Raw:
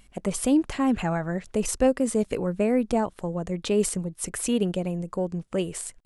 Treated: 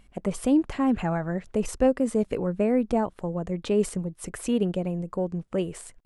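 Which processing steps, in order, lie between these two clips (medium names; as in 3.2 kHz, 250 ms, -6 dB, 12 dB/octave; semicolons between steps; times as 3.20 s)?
treble shelf 3 kHz -9.5 dB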